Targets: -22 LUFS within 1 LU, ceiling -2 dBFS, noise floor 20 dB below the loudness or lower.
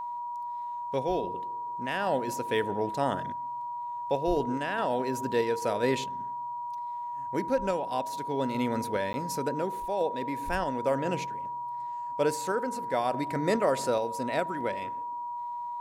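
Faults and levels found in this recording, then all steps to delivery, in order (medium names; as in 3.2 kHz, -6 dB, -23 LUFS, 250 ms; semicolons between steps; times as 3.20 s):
dropouts 1; longest dropout 10 ms; steady tone 960 Hz; tone level -33 dBFS; loudness -31.0 LUFS; peak level -13.0 dBFS; loudness target -22.0 LUFS
-> interpolate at 9.13 s, 10 ms; band-stop 960 Hz, Q 30; trim +9 dB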